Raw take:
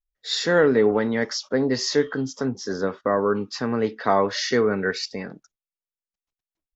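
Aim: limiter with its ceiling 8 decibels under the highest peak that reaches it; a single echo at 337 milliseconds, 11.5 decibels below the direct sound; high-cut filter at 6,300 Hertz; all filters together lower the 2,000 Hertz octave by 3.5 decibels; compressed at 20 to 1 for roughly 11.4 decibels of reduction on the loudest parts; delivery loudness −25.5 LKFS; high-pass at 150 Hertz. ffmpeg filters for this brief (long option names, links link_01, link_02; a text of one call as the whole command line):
ffmpeg -i in.wav -af "highpass=150,lowpass=6300,equalizer=frequency=2000:width_type=o:gain=-4.5,acompressor=threshold=-25dB:ratio=20,alimiter=limit=-22dB:level=0:latency=1,aecho=1:1:337:0.266,volume=6.5dB" out.wav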